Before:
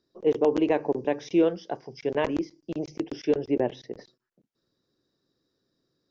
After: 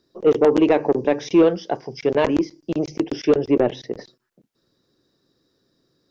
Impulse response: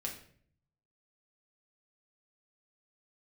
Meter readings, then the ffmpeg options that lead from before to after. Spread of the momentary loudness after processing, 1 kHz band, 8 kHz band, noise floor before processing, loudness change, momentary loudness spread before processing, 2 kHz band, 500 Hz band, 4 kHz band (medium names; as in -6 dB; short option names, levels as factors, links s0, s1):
12 LU, +7.0 dB, no reading, -82 dBFS, +7.5 dB, 13 LU, +7.0 dB, +7.5 dB, +8.0 dB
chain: -af "asoftclip=type=tanh:threshold=0.168,volume=2.82"